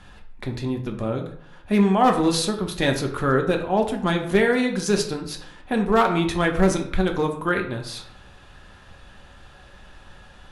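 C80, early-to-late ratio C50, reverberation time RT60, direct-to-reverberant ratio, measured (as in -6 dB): 12.0 dB, 9.0 dB, 0.65 s, 2.5 dB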